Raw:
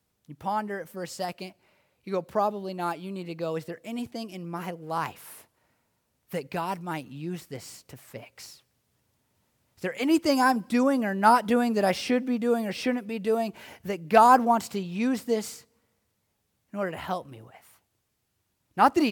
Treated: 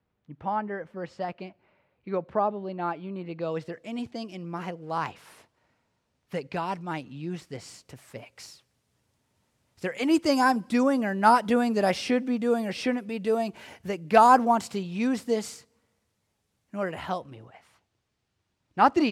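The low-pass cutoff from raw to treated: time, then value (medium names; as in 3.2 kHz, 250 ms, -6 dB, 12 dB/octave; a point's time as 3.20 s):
3.25 s 2.3 kHz
3.67 s 5.9 kHz
7.19 s 5.9 kHz
8.07 s 10 kHz
16.93 s 10 kHz
17.36 s 5.5 kHz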